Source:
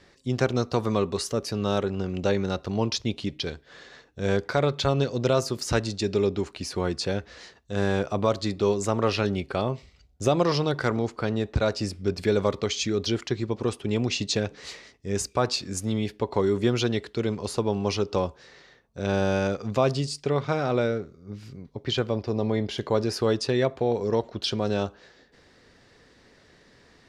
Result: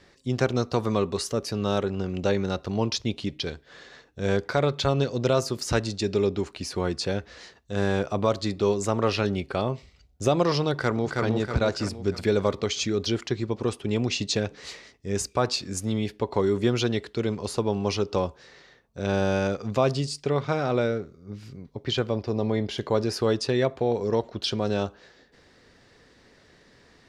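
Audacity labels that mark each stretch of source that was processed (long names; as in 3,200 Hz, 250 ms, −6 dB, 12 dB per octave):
10.730000	11.240000	delay throw 320 ms, feedback 50%, level −2.5 dB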